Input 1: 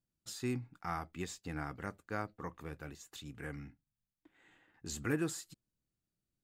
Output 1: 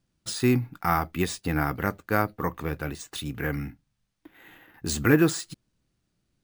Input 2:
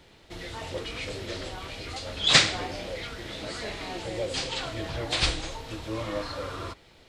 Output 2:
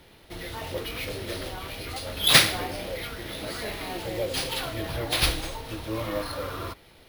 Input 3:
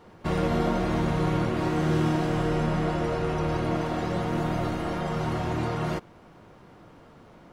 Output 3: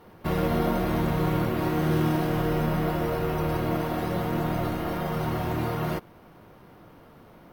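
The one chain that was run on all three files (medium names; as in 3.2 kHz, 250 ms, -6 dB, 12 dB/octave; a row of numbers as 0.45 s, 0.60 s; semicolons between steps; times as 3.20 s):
careless resampling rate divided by 3×, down filtered, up hold; normalise loudness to -27 LUFS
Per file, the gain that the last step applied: +15.0 dB, +2.0 dB, 0.0 dB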